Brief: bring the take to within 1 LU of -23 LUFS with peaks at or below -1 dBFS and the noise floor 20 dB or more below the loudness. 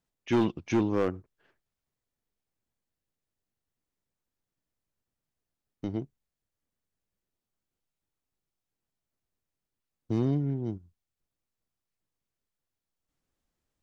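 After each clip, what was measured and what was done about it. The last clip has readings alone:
clipped samples 0.3%; clipping level -19.0 dBFS; loudness -30.0 LUFS; peak level -19.0 dBFS; loudness target -23.0 LUFS
-> clip repair -19 dBFS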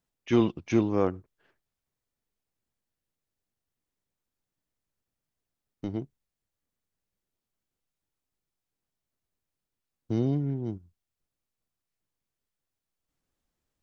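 clipped samples 0.0%; loudness -28.5 LUFS; peak level -11.5 dBFS; loudness target -23.0 LUFS
-> trim +5.5 dB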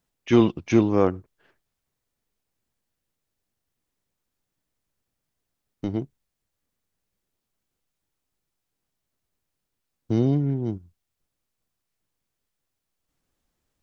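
loudness -23.0 LUFS; peak level -6.0 dBFS; noise floor -82 dBFS

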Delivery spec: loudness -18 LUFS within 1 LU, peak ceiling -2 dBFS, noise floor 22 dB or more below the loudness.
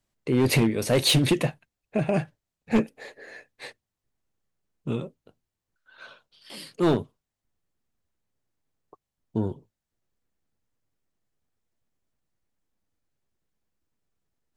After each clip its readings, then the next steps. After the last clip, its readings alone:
clipped samples 0.6%; clipping level -15.0 dBFS; loudness -25.0 LUFS; peak level -15.0 dBFS; loudness target -18.0 LUFS
-> clip repair -15 dBFS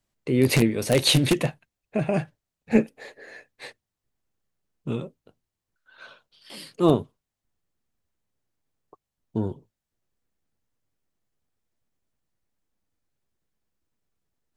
clipped samples 0.0%; loudness -24.0 LUFS; peak level -6.0 dBFS; loudness target -18.0 LUFS
-> trim +6 dB; peak limiter -2 dBFS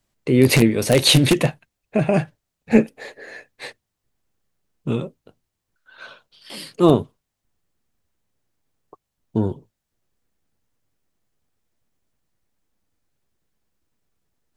loudness -18.5 LUFS; peak level -2.0 dBFS; noise floor -80 dBFS

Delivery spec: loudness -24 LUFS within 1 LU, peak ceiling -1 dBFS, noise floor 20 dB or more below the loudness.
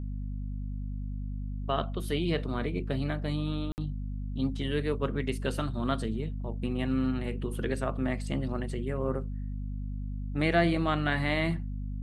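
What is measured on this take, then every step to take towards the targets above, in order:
dropouts 1; longest dropout 59 ms; hum 50 Hz; highest harmonic 250 Hz; hum level -32 dBFS; loudness -32.0 LUFS; peak level -12.0 dBFS; loudness target -24.0 LUFS
-> interpolate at 3.72 s, 59 ms; de-hum 50 Hz, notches 5; trim +8 dB

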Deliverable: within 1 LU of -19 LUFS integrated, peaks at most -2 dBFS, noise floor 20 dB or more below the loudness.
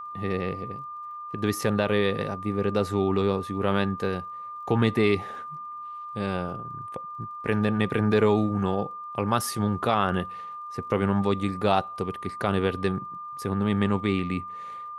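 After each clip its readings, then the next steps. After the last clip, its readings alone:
tick rate 28 per s; steady tone 1.2 kHz; tone level -35 dBFS; loudness -27.0 LUFS; peak level -8.0 dBFS; loudness target -19.0 LUFS
-> de-click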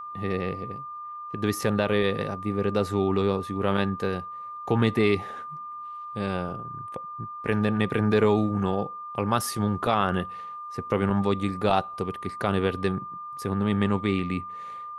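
tick rate 0.067 per s; steady tone 1.2 kHz; tone level -35 dBFS
-> band-stop 1.2 kHz, Q 30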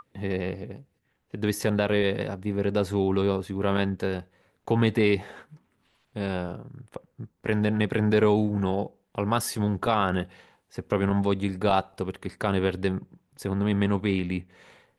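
steady tone not found; loudness -26.5 LUFS; peak level -8.5 dBFS; loudness target -19.0 LUFS
-> trim +7.5 dB; peak limiter -2 dBFS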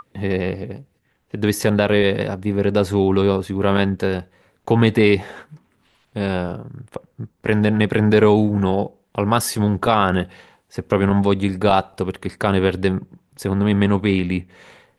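loudness -19.0 LUFS; peak level -2.0 dBFS; noise floor -65 dBFS

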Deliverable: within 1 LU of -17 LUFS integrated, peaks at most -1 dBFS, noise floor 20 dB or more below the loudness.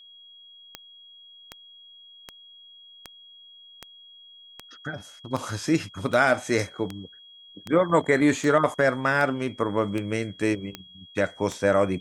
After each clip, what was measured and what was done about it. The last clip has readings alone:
clicks found 15; steady tone 3.3 kHz; tone level -47 dBFS; loudness -24.5 LUFS; peak level -6.0 dBFS; loudness target -17.0 LUFS
-> de-click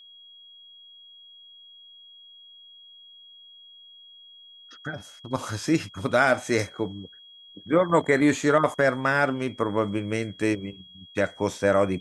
clicks found 0; steady tone 3.3 kHz; tone level -47 dBFS
-> band-stop 3.3 kHz, Q 30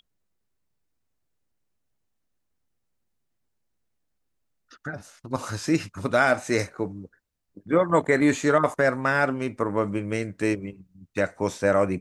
steady tone not found; loudness -24.5 LUFS; peak level -6.0 dBFS; loudness target -17.0 LUFS
-> trim +7.5 dB; peak limiter -1 dBFS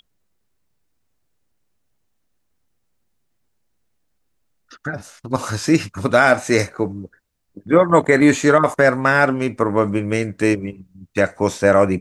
loudness -17.0 LUFS; peak level -1.0 dBFS; noise floor -68 dBFS

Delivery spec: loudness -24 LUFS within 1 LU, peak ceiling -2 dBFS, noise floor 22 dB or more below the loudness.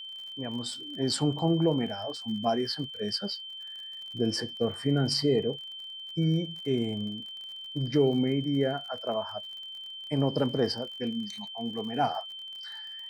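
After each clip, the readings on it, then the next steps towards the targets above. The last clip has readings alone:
tick rate 45 per s; steady tone 3.1 kHz; tone level -39 dBFS; loudness -30.5 LUFS; peak level -13.0 dBFS; loudness target -24.0 LUFS
-> de-click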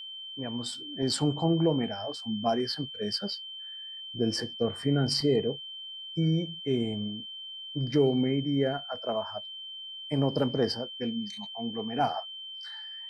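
tick rate 0.076 per s; steady tone 3.1 kHz; tone level -39 dBFS
-> band-stop 3.1 kHz, Q 30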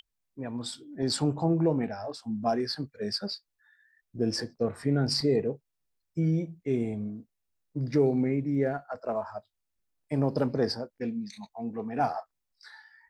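steady tone not found; loudness -30.0 LUFS; peak level -13.5 dBFS; loudness target -24.0 LUFS
-> trim +6 dB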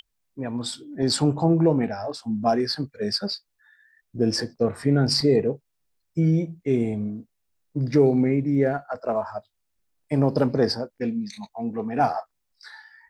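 loudness -24.0 LUFS; peak level -7.5 dBFS; noise floor -76 dBFS

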